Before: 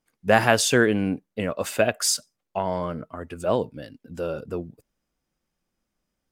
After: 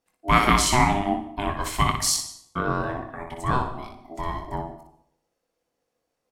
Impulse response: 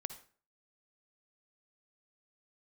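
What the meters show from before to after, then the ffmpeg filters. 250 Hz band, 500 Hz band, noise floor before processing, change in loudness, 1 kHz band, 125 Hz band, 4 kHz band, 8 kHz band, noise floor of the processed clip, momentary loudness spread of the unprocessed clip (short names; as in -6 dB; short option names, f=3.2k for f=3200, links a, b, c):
-1.5 dB, -7.5 dB, -82 dBFS, 0.0 dB, +5.5 dB, +3.0 dB, +1.0 dB, +0.5 dB, -80 dBFS, 17 LU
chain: -filter_complex "[0:a]aeval=exprs='val(0)*sin(2*PI*500*n/s)':c=same,aecho=1:1:22|61:0.398|0.501,asplit=2[a][b];[1:a]atrim=start_sample=2205,asetrate=26460,aresample=44100[c];[b][c]afir=irnorm=-1:irlink=0,volume=3.5dB[d];[a][d]amix=inputs=2:normalize=0,volume=-6.5dB"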